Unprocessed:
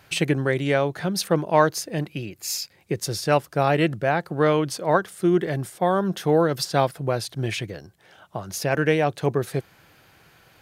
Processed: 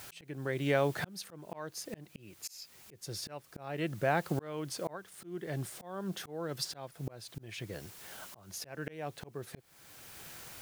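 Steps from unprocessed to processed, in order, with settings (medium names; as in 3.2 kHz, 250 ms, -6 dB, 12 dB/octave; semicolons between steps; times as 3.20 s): added noise white -50 dBFS; compression 1.5:1, threshold -30 dBFS, peak gain reduction 7 dB; slow attack 720 ms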